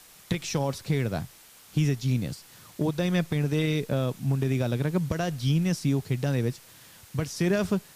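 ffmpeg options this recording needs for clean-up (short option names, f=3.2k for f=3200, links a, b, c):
-af "afftdn=nr=20:nf=-52"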